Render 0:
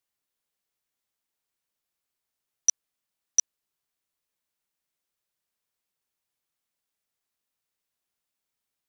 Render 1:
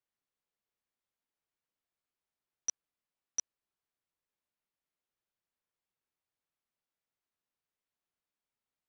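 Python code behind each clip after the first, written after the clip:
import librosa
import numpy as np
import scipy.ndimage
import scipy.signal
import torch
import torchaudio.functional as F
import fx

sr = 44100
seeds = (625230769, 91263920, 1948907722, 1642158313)

y = fx.lowpass(x, sr, hz=2100.0, slope=6)
y = y * 10.0 ** (-3.5 / 20.0)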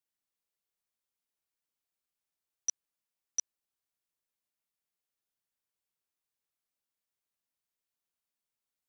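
y = fx.high_shelf(x, sr, hz=4000.0, db=8.5)
y = y * 10.0 ** (-4.0 / 20.0)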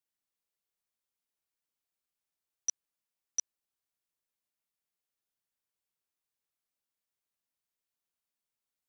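y = x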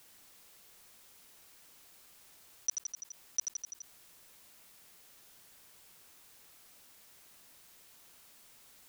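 y = fx.echo_feedback(x, sr, ms=84, feedback_pct=54, wet_db=-13.5)
y = fx.env_flatten(y, sr, amount_pct=50)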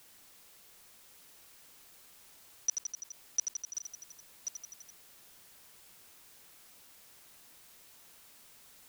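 y = x + 10.0 ** (-8.5 / 20.0) * np.pad(x, (int(1084 * sr / 1000.0), 0))[:len(x)]
y = y * 10.0 ** (1.0 / 20.0)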